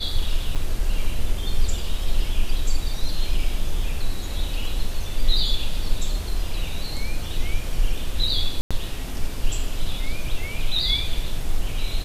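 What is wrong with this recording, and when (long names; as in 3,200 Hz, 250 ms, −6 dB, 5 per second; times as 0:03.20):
0:00.55–0:00.56: drop-out 7.2 ms
0:08.61–0:08.71: drop-out 96 ms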